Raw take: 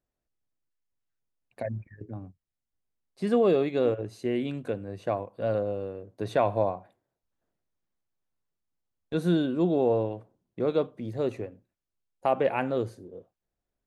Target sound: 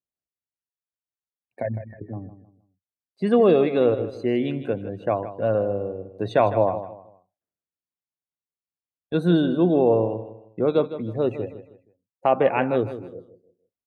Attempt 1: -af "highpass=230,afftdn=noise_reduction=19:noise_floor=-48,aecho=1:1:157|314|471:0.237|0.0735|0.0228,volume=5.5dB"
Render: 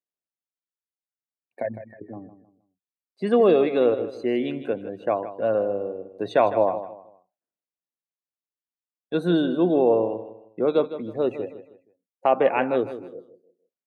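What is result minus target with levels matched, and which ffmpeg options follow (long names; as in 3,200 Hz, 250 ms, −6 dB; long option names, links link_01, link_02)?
125 Hz band −7.5 dB
-af "highpass=72,afftdn=noise_reduction=19:noise_floor=-48,aecho=1:1:157|314|471:0.237|0.0735|0.0228,volume=5.5dB"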